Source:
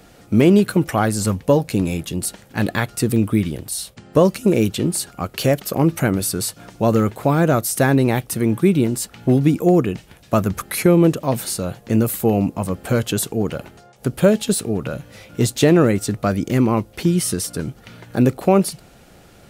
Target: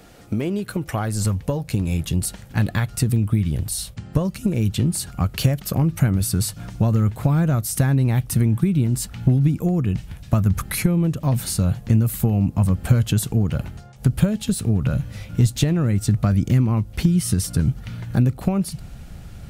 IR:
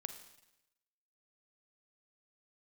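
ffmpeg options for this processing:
-af "acompressor=threshold=-21dB:ratio=6,asubboost=boost=7.5:cutoff=140"

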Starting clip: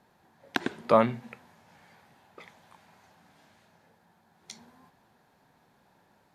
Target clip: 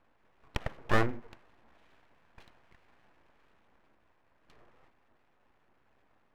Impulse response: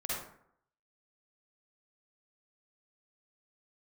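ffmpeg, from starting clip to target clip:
-af "lowpass=frequency=2000:width=0.5412,lowpass=frequency=2000:width=1.3066,equalizer=frequency=110:width_type=o:width=0.25:gain=14,aeval=exprs='abs(val(0))':channel_layout=same,volume=-3.5dB"

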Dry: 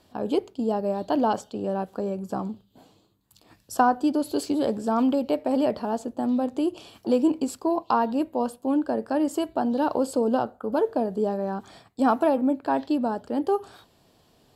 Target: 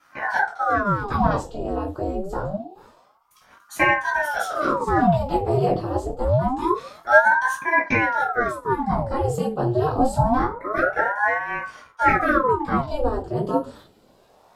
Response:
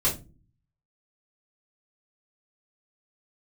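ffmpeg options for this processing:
-filter_complex "[1:a]atrim=start_sample=2205[link_01];[0:a][link_01]afir=irnorm=-1:irlink=0,aeval=exprs='val(0)*sin(2*PI*720*n/s+720*0.85/0.26*sin(2*PI*0.26*n/s))':channel_layout=same,volume=-6.5dB"

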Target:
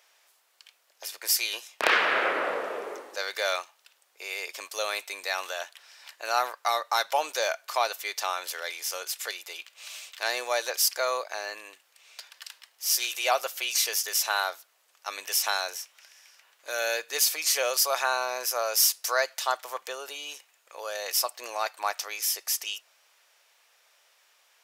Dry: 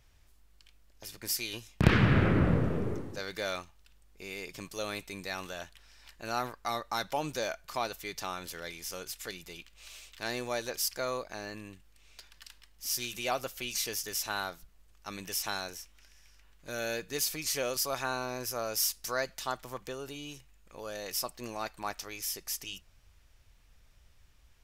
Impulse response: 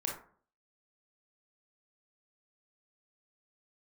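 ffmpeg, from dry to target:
-af "highpass=frequency=540:width=0.5412,highpass=frequency=540:width=1.3066,volume=8dB"

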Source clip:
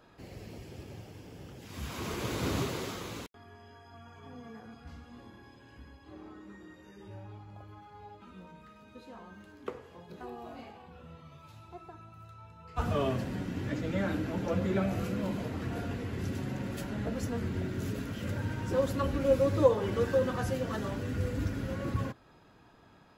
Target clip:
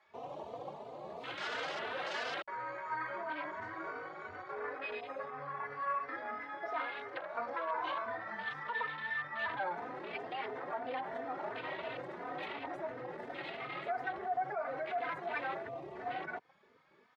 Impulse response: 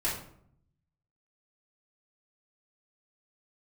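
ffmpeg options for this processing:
-filter_complex "[0:a]dynaudnorm=framelen=150:gausssize=31:maxgain=5.5dB,asplit=2[link_01][link_02];[link_02]aeval=exprs='sgn(val(0))*max(abs(val(0))-0.00501,0)':channel_layout=same,volume=-4dB[link_03];[link_01][link_03]amix=inputs=2:normalize=0,acompressor=threshold=-35dB:ratio=16,afwtdn=0.00398,alimiter=level_in=12.5dB:limit=-24dB:level=0:latency=1:release=17,volume=-12.5dB,highpass=frequency=230:poles=1,acrossover=split=400 3300:gain=0.141 1 0.0794[link_04][link_05][link_06];[link_04][link_05][link_06]amix=inputs=3:normalize=0,asetrate=59535,aresample=44100,asplit=2[link_07][link_08];[link_08]adelay=3.2,afreqshift=2.9[link_09];[link_07][link_09]amix=inputs=2:normalize=1,volume=14dB"

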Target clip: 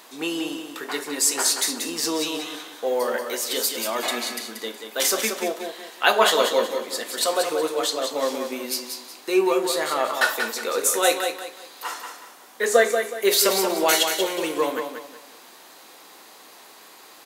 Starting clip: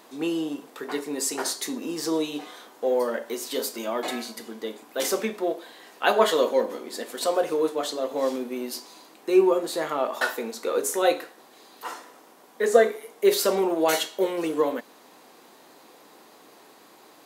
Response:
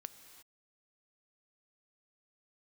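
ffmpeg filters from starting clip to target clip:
-af "tiltshelf=frequency=830:gain=-6,aecho=1:1:184|368|552|736:0.473|0.151|0.0485|0.0155,volume=2dB"

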